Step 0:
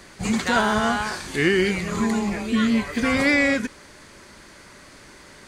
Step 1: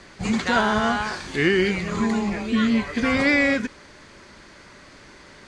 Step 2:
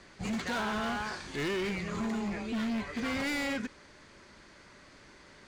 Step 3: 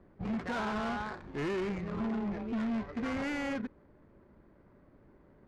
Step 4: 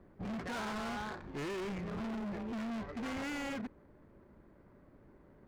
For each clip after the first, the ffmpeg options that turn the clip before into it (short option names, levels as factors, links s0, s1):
-af "lowpass=6000"
-af "asoftclip=type=hard:threshold=0.0841,volume=0.376"
-af "adynamicsmooth=sensitivity=3.5:basefreq=580"
-af "asoftclip=type=hard:threshold=0.0133"